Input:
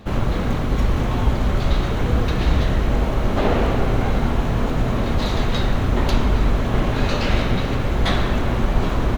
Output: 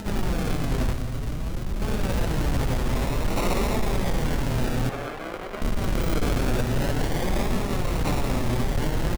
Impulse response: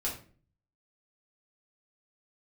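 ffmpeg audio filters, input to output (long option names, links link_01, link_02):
-filter_complex "[0:a]asettb=1/sr,asplit=3[link_01][link_02][link_03];[link_01]atrim=end=6.124[link_04];[link_02]atrim=start=6.12:end=6.61,asetpts=PTS-STARTPTS,afade=type=in:duration=0.004:curve=qsin,afade=type=out:start_time=0.486:duration=0.004:curve=qsin,equalizer=frequency=1300:width=0.41:gain=8.5[link_05];[link_03]atrim=start=6.606[link_06];[link_04][link_05]acrossfade=duration=0.004:curve1=hsin:curve2=qsin[link_07];[link_07][link_06]acrossfade=duration=0.004:curve1=qsin:curve2=hsin,acrusher=samples=39:mix=1:aa=0.000001:lfo=1:lforange=23.4:lforate=0.22,acompressor=mode=upward:threshold=-23dB:ratio=2.5,flanger=delay=4.5:depth=3.7:regen=41:speed=0.53:shape=triangular,asoftclip=type=hard:threshold=-18.5dB,asettb=1/sr,asplit=3[link_08][link_09][link_10];[link_08]atrim=end=0.924[link_11];[link_09]atrim=start=0.92:end=1.82,asetpts=PTS-STARTPTS,afade=type=in:duration=0.004:curve=qsin,afade=type=out:start_time=0.896:duration=0.004:curve=qsin,acrossover=split=120|290|3400[link_12][link_13][link_14][link_15];[link_12]acompressor=threshold=-26dB:ratio=4[link_16];[link_13]acompressor=threshold=-37dB:ratio=4[link_17];[link_14]acompressor=threshold=-41dB:ratio=4[link_18];[link_15]acompressor=threshold=-46dB:ratio=4[link_19];[link_16][link_17][link_18][link_19]amix=inputs=4:normalize=0[link_20];[link_10]atrim=start=1.816[link_21];[link_11][link_20]acrossfade=duration=0.004:curve1=hsin:curve2=qsin[link_22];[link_22][link_21]acrossfade=duration=0.004:curve1=qsin:curve2=hsin,asettb=1/sr,asplit=3[link_23][link_24][link_25];[link_23]atrim=end=4.894[link_26];[link_24]atrim=start=4.89:end=5.62,asetpts=PTS-STARTPTS,afade=type=in:duration=0.004:curve=qsin,afade=type=out:start_time=0.726:duration=0.004:curve=qsin,acrossover=split=360 2900:gain=0.112 1 0.251[link_27][link_28][link_29];[link_27][link_28][link_29]amix=inputs=3:normalize=0[link_30];[link_25]atrim=start=5.616[link_31];[link_26][link_30]acrossfade=duration=0.004:curve1=hsin:curve2=qsin[link_32];[link_32][link_31]acrossfade=duration=0.004:curve1=qsin:curve2=hsin,aecho=1:1:175:0.237"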